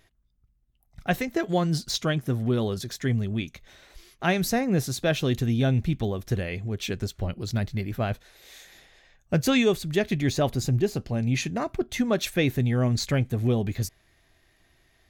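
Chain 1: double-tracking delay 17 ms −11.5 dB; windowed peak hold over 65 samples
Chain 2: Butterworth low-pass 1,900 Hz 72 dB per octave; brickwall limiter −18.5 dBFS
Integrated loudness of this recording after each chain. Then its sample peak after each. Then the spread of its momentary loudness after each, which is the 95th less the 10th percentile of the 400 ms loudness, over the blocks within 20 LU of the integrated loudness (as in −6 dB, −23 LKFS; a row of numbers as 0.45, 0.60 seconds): −30.0, −29.5 LKFS; −12.5, −18.5 dBFS; 7, 6 LU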